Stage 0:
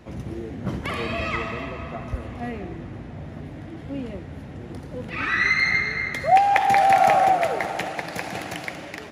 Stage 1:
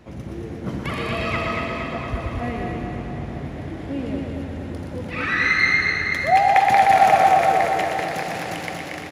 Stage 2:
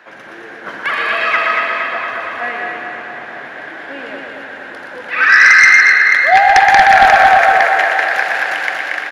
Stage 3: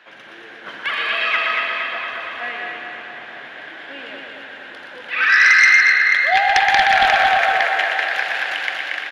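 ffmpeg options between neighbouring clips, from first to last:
-filter_complex "[0:a]asplit=2[s0][s1];[s1]aecho=0:1:122.4|209.9:0.562|0.282[s2];[s0][s2]amix=inputs=2:normalize=0,dynaudnorm=f=770:g=5:m=1.58,asplit=2[s3][s4];[s4]aecho=0:1:232|464|696|928|1160|1392|1624|1856:0.562|0.337|0.202|0.121|0.0729|0.0437|0.0262|0.0157[s5];[s3][s5]amix=inputs=2:normalize=0,volume=0.891"
-filter_complex "[0:a]highpass=770,equalizer=f=1600:t=o:w=0.32:g=14,acrossover=split=4300[s0][s1];[s0]aeval=exprs='0.944*sin(PI/2*2.24*val(0)/0.944)':c=same[s2];[s2][s1]amix=inputs=2:normalize=0,volume=0.891"
-af "equalizer=f=3200:t=o:w=1:g=11,volume=0.376"

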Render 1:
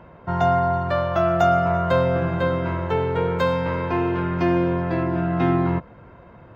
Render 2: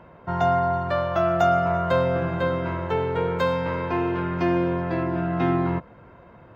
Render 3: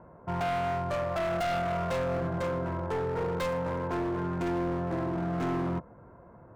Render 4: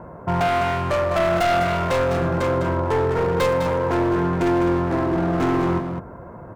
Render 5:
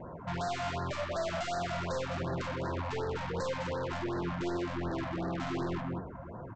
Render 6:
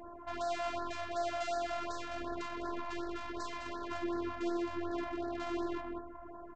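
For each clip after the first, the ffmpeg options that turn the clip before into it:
-af "lowshelf=f=140:g=-4,volume=0.841"
-filter_complex "[0:a]acrossover=split=1600[s0][s1];[s1]acrusher=bits=4:mix=0:aa=0.5[s2];[s0][s2]amix=inputs=2:normalize=0,asoftclip=type=hard:threshold=0.0631,volume=0.668"
-filter_complex "[0:a]asplit=2[s0][s1];[s1]acompressor=threshold=0.0112:ratio=6,volume=0.891[s2];[s0][s2]amix=inputs=2:normalize=0,aecho=1:1:204:0.422,volume=2.51"
-af "aresample=16000,asoftclip=type=tanh:threshold=0.0398,aresample=44100,flanger=delay=7.4:depth=7.6:regen=74:speed=1.7:shape=sinusoidal,afftfilt=real='re*(1-between(b*sr/1024,350*pow(2800/350,0.5+0.5*sin(2*PI*2.7*pts/sr))/1.41,350*pow(2800/350,0.5+0.5*sin(2*PI*2.7*pts/sr))*1.41))':imag='im*(1-between(b*sr/1024,350*pow(2800/350,0.5+0.5*sin(2*PI*2.7*pts/sr))/1.41,350*pow(2800/350,0.5+0.5*sin(2*PI*2.7*pts/sr))*1.41))':win_size=1024:overlap=0.75"
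-af "afftfilt=real='hypot(re,im)*cos(PI*b)':imag='0':win_size=512:overlap=0.75"

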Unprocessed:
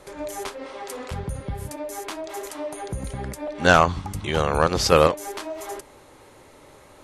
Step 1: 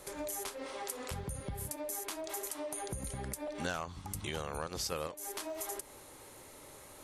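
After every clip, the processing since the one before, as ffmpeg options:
-af "aemphasis=mode=production:type=50fm,acompressor=threshold=0.0282:ratio=5,volume=0.531"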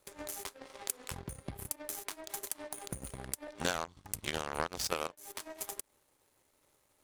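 -af "aeval=exprs='sgn(val(0))*max(abs(val(0))-0.00188,0)':c=same,aeval=exprs='0.1*(cos(1*acos(clip(val(0)/0.1,-1,1)))-cos(1*PI/2))+0.0112*(cos(3*acos(clip(val(0)/0.1,-1,1)))-cos(3*PI/2))+0.000794*(cos(5*acos(clip(val(0)/0.1,-1,1)))-cos(5*PI/2))+0.00891*(cos(7*acos(clip(val(0)/0.1,-1,1)))-cos(7*PI/2))':c=same,volume=2.99"

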